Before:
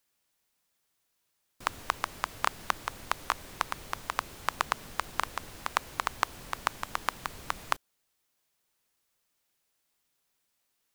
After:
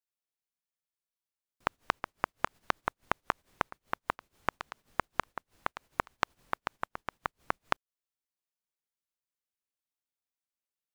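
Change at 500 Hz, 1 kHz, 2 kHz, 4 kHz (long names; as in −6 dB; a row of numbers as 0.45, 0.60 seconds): +2.0, −2.5, −2.0, −7.0 decibels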